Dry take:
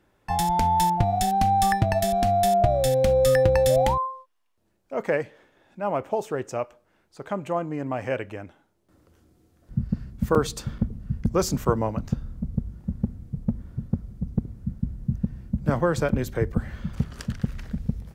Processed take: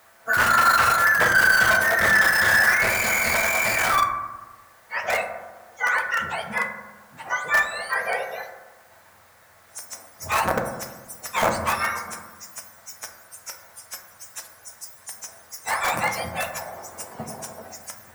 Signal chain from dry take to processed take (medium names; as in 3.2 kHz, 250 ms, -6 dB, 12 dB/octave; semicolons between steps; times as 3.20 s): spectrum inverted on a logarithmic axis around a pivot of 1.1 kHz; hard clipper -21 dBFS, distortion -11 dB; flange 1.3 Hz, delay 2.5 ms, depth 7 ms, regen -53%; integer overflow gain 24.5 dB; added noise white -60 dBFS; high-order bell 990 Hz +13.5 dB 2.4 oct; reverberation RT60 1.2 s, pre-delay 5 ms, DRR 3 dB